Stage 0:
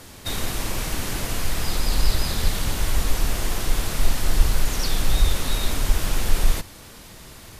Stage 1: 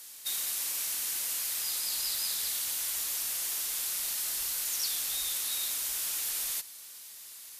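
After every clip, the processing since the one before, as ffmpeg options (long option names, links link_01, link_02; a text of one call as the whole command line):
ffmpeg -i in.wav -af "aderivative" out.wav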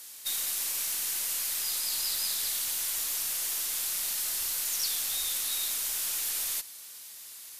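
ffmpeg -i in.wav -af "aeval=exprs='0.112*(cos(1*acos(clip(val(0)/0.112,-1,1)))-cos(1*PI/2))+0.00891*(cos(2*acos(clip(val(0)/0.112,-1,1)))-cos(2*PI/2))+0.00562*(cos(4*acos(clip(val(0)/0.112,-1,1)))-cos(4*PI/2))+0.00398*(cos(6*acos(clip(val(0)/0.112,-1,1)))-cos(6*PI/2))':channel_layout=same,volume=1.5dB" out.wav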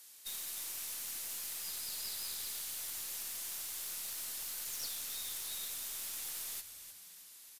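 ffmpeg -i in.wav -filter_complex "[0:a]asplit=6[link_01][link_02][link_03][link_04][link_05][link_06];[link_02]adelay=307,afreqshift=-91,volume=-11.5dB[link_07];[link_03]adelay=614,afreqshift=-182,volume=-17.9dB[link_08];[link_04]adelay=921,afreqshift=-273,volume=-24.3dB[link_09];[link_05]adelay=1228,afreqshift=-364,volume=-30.6dB[link_10];[link_06]adelay=1535,afreqshift=-455,volume=-37dB[link_11];[link_01][link_07][link_08][link_09][link_10][link_11]amix=inputs=6:normalize=0,aeval=exprs='(tanh(12.6*val(0)+0.65)-tanh(0.65))/12.6':channel_layout=same,volume=-7dB" out.wav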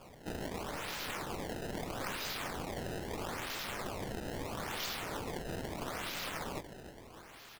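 ffmpeg -i in.wav -af "acrusher=samples=22:mix=1:aa=0.000001:lfo=1:lforange=35.2:lforate=0.77,volume=2dB" out.wav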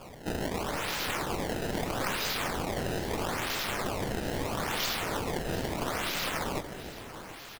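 ffmpeg -i in.wav -af "aecho=1:1:735:0.168,volume=7.5dB" out.wav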